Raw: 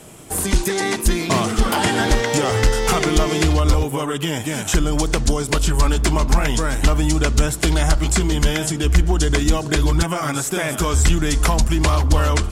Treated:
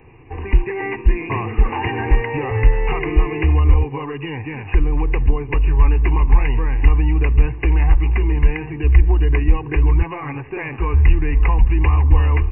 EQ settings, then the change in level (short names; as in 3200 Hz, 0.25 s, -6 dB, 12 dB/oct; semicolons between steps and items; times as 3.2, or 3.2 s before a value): brick-wall FIR low-pass 2900 Hz; resonant low shelf 220 Hz +6 dB, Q 1.5; fixed phaser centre 930 Hz, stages 8; -1.0 dB